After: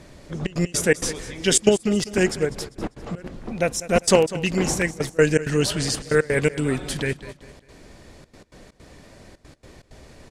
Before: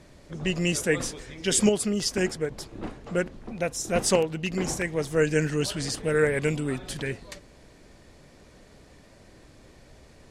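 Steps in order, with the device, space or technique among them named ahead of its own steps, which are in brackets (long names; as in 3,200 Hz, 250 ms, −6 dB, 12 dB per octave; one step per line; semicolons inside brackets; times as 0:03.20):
trance gate with a delay (gate pattern "xxxxx.x.xx.x" 162 BPM −24 dB; repeating echo 198 ms, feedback 36%, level −16 dB)
level +6 dB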